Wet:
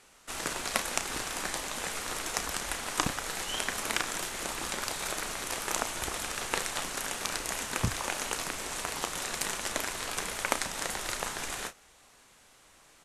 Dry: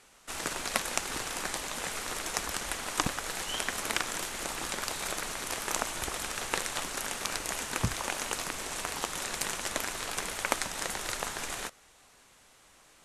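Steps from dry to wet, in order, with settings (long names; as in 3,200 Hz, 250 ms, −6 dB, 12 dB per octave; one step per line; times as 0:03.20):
double-tracking delay 33 ms −10.5 dB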